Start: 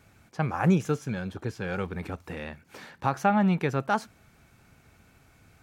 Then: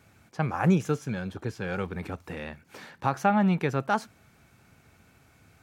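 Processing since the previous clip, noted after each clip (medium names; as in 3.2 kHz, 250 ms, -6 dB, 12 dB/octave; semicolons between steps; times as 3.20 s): high-pass 61 Hz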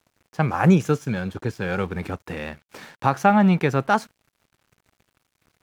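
crossover distortion -54 dBFS; trim +6.5 dB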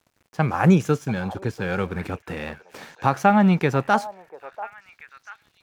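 repeats whose band climbs or falls 689 ms, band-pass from 720 Hz, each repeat 1.4 oct, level -11.5 dB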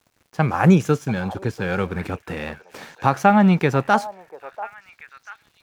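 crackle 160 per s -53 dBFS; trim +2 dB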